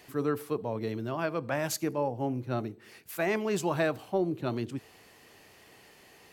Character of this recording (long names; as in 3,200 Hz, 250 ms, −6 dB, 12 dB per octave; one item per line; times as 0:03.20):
background noise floor −57 dBFS
spectral slope −5.5 dB per octave